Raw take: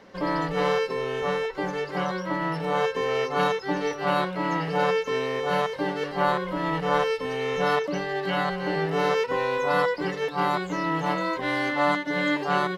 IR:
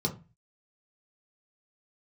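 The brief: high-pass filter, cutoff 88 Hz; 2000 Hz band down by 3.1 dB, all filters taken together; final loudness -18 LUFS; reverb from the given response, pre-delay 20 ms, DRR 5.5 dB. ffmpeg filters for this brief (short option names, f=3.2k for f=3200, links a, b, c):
-filter_complex "[0:a]highpass=88,equalizer=f=2k:t=o:g=-4,asplit=2[a][b];[1:a]atrim=start_sample=2205,adelay=20[c];[b][c]afir=irnorm=-1:irlink=0,volume=-11.5dB[d];[a][d]amix=inputs=2:normalize=0,volume=5.5dB"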